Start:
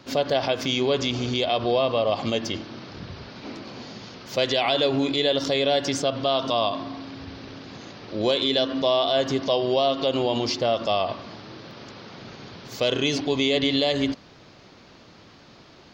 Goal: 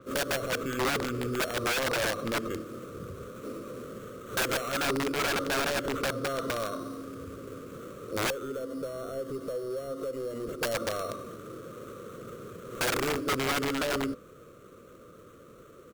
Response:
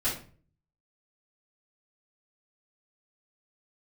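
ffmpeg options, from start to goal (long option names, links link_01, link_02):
-filter_complex "[0:a]acrusher=samples=9:mix=1:aa=0.000001,asoftclip=type=tanh:threshold=-23dB,firequalizer=gain_entry='entry(280,0);entry(500,11);entry(830,-25);entry(1200,9);entry(1700,-8);entry(8600,-1)':delay=0.05:min_phase=1,asettb=1/sr,asplit=3[link_01][link_02][link_03];[link_01]atrim=end=8.304[link_04];[link_02]atrim=start=8.3:end=10.63,asetpts=PTS-STARTPTS,afade=type=in:duration=0.004:curve=qsin,afade=type=out:start_time=2.326:duration=0.004:curve=qsin,acrossover=split=790|2400[link_05][link_06][link_07];[link_05]acompressor=threshold=-30dB:ratio=4[link_08];[link_06]acompressor=threshold=-47dB:ratio=4[link_09];[link_07]acompressor=threshold=-48dB:ratio=4[link_10];[link_08][link_09][link_10]amix=inputs=3:normalize=0[link_11];[link_03]atrim=start=10.626[link_12];[link_04][link_11]acrossfade=duration=0.004:curve1=hsin:curve2=qsin[link_13];[link_13][link_12]acrossfade=duration=0.004:curve1=qsin:curve2=hsin,aeval=exprs='(mod(8.91*val(0)+1,2)-1)/8.91':channel_layout=same,adynamicequalizer=threshold=0.00794:dfrequency=5900:dqfactor=0.7:tfrequency=5900:tqfactor=0.7:attack=5:release=100:ratio=0.375:range=3:mode=cutabove:tftype=highshelf,volume=-4dB"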